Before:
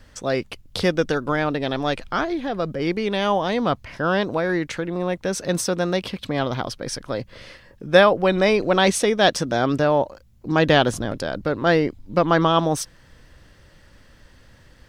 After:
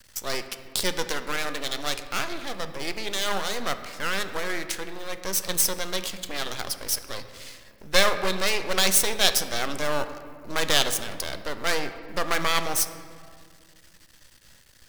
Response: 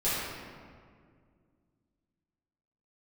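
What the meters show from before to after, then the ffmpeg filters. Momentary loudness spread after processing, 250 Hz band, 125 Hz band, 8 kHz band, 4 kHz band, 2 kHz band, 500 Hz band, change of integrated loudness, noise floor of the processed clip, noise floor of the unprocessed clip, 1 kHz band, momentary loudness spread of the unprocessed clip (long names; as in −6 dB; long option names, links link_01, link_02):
12 LU, −13.5 dB, −14.0 dB, +6.0 dB, +2.0 dB, −3.0 dB, −10.5 dB, −4.5 dB, −55 dBFS, −52 dBFS, −7.5 dB, 10 LU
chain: -filter_complex "[0:a]lowshelf=frequency=430:gain=-3,aeval=exprs='max(val(0),0)':channel_layout=same,crystalizer=i=6:c=0,asplit=2[link_01][link_02];[1:a]atrim=start_sample=2205,highshelf=frequency=5400:gain=-7[link_03];[link_02][link_03]afir=irnorm=-1:irlink=0,volume=-17.5dB[link_04];[link_01][link_04]amix=inputs=2:normalize=0,volume=-6.5dB"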